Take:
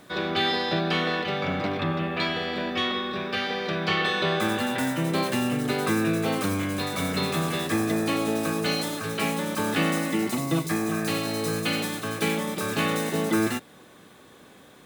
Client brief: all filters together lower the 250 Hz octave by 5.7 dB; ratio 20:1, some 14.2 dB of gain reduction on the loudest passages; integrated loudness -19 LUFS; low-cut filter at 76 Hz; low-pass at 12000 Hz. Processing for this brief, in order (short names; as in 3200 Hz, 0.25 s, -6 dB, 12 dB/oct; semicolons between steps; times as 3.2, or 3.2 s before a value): HPF 76 Hz; LPF 12000 Hz; bell 250 Hz -8 dB; compressor 20:1, threshold -36 dBFS; gain +20.5 dB